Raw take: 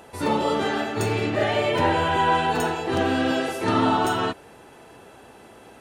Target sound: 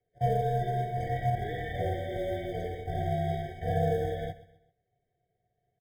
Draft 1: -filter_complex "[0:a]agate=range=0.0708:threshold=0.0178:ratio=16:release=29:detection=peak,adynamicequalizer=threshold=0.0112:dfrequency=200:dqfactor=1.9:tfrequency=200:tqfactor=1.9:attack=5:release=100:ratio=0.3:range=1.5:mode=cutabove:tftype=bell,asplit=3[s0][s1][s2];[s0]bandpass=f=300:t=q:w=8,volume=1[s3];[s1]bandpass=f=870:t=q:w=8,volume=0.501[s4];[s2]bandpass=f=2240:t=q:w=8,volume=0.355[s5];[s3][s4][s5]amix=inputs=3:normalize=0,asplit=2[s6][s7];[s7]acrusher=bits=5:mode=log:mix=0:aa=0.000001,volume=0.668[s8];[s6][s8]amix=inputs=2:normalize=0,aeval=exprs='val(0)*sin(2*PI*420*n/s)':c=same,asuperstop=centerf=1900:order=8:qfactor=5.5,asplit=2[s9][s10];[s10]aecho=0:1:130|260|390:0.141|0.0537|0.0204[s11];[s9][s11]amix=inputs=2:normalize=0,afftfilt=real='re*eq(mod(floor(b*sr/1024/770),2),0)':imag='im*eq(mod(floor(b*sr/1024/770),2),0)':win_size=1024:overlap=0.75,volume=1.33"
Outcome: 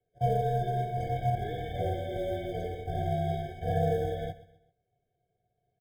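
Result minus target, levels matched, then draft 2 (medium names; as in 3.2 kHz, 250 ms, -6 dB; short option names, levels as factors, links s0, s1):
2 kHz band -3.5 dB
-filter_complex "[0:a]agate=range=0.0708:threshold=0.0178:ratio=16:release=29:detection=peak,adynamicequalizer=threshold=0.0112:dfrequency=200:dqfactor=1.9:tfrequency=200:tqfactor=1.9:attack=5:release=100:ratio=0.3:range=1.5:mode=cutabove:tftype=bell,asplit=3[s0][s1][s2];[s0]bandpass=f=300:t=q:w=8,volume=1[s3];[s1]bandpass=f=870:t=q:w=8,volume=0.501[s4];[s2]bandpass=f=2240:t=q:w=8,volume=0.355[s5];[s3][s4][s5]amix=inputs=3:normalize=0,asplit=2[s6][s7];[s7]acrusher=bits=5:mode=log:mix=0:aa=0.000001,volume=0.668[s8];[s6][s8]amix=inputs=2:normalize=0,aeval=exprs='val(0)*sin(2*PI*420*n/s)':c=same,asplit=2[s9][s10];[s10]aecho=0:1:130|260|390:0.141|0.0537|0.0204[s11];[s9][s11]amix=inputs=2:normalize=0,afftfilt=real='re*eq(mod(floor(b*sr/1024/770),2),0)':imag='im*eq(mod(floor(b*sr/1024/770),2),0)':win_size=1024:overlap=0.75,volume=1.33"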